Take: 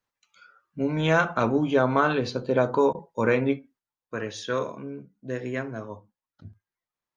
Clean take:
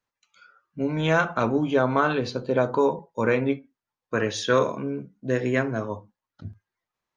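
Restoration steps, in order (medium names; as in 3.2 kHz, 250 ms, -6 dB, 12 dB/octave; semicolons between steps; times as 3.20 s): interpolate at 2.93 s, 16 ms; trim 0 dB, from 3.79 s +7 dB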